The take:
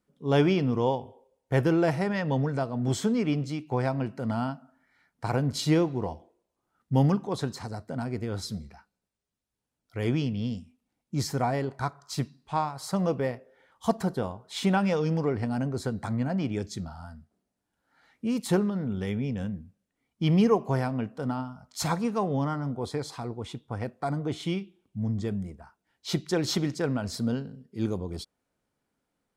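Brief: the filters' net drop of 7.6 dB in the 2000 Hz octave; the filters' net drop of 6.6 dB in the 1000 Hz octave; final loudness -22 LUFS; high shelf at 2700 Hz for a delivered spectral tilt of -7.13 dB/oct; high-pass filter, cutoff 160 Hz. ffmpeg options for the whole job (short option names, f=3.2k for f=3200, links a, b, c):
-af "highpass=160,equalizer=f=1k:t=o:g=-7.5,equalizer=f=2k:t=o:g=-5,highshelf=f=2.7k:g=-5.5,volume=9.5dB"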